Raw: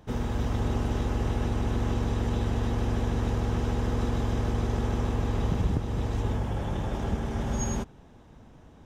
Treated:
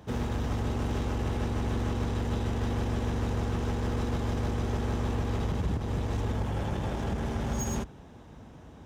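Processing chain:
high-pass filter 45 Hz 24 dB per octave
brickwall limiter −21.5 dBFS, peak gain reduction 7 dB
in parallel at −6 dB: wave folding −38.5 dBFS

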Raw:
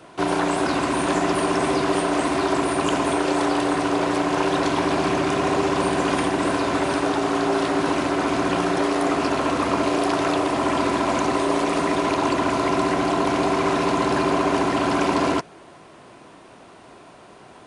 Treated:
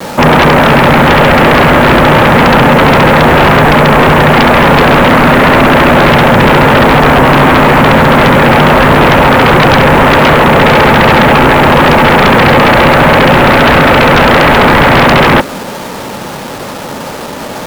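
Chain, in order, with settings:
single-sideband voice off tune −140 Hz 260–2,000 Hz
bit reduction 8 bits
sine wavefolder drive 15 dB, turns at −8 dBFS
level +6.5 dB

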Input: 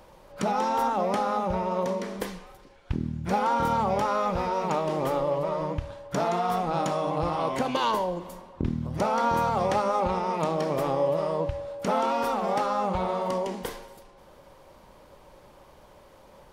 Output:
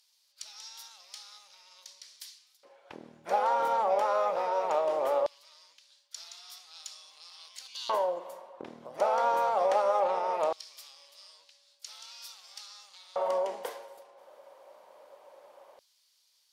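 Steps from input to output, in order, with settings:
harmonic generator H 6 −29 dB, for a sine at −13.5 dBFS
auto-filter high-pass square 0.19 Hz 590–4,600 Hz
level −6 dB

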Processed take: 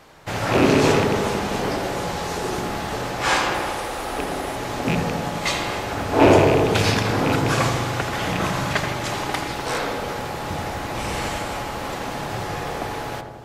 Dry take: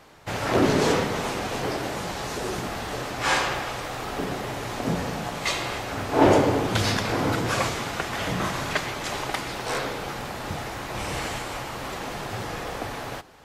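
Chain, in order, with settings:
loose part that buzzes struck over −25 dBFS, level −17 dBFS
0:03.54–0:04.56: thirty-one-band graphic EQ 125 Hz −12 dB, 200 Hz −9 dB, 10,000 Hz +9 dB
feedback echo with a low-pass in the loop 82 ms, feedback 77%, low-pass 1,200 Hz, level −5 dB
level +2.5 dB

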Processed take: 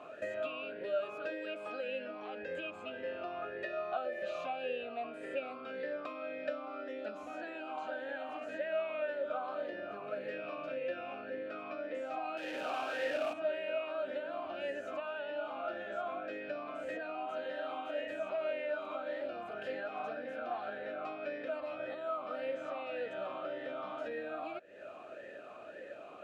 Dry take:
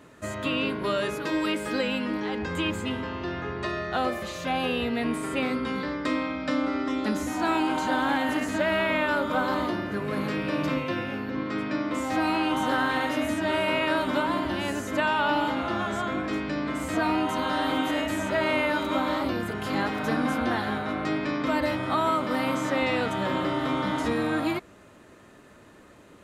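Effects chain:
0:12.37–0:13.33: sign of each sample alone
downward compressor 12 to 1, threshold −40 dBFS, peak gain reduction 19.5 dB
formant filter swept between two vowels a-e 1.8 Hz
level +14.5 dB

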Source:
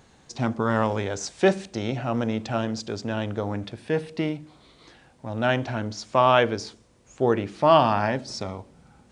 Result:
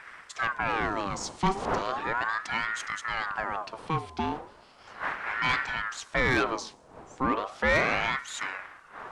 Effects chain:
wind on the microphone 510 Hz −37 dBFS
soft clipping −16 dBFS, distortion −11 dB
ring modulator whose carrier an LFO sweeps 1,100 Hz, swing 50%, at 0.36 Hz

